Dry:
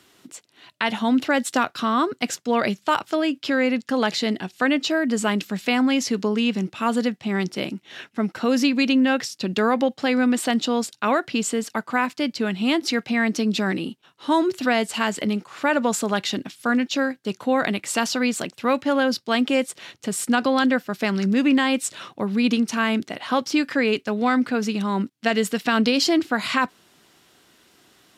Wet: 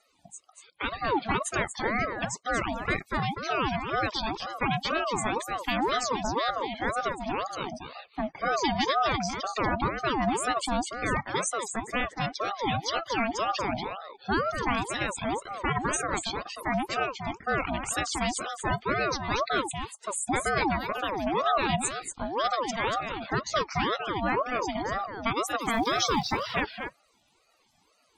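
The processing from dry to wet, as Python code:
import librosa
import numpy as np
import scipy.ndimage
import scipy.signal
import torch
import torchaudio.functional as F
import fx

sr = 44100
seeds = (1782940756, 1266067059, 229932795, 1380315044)

y = fx.high_shelf(x, sr, hz=5100.0, db=10.0)
y = fx.spec_topn(y, sr, count=32)
y = fx.dmg_crackle(y, sr, seeds[0], per_s=400.0, level_db=-33.0, at=(25.64, 26.39), fade=0.02)
y = y + 10.0 ** (-7.0 / 20.0) * np.pad(y, (int(237 * sr / 1000.0), 0))[:len(y)]
y = fx.ring_lfo(y, sr, carrier_hz=720.0, swing_pct=40, hz=2.0)
y = y * 10.0 ** (-5.0 / 20.0)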